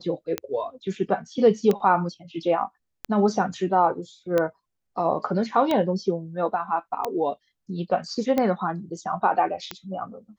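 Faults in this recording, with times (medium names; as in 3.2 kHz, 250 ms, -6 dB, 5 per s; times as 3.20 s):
tick 45 rpm -11 dBFS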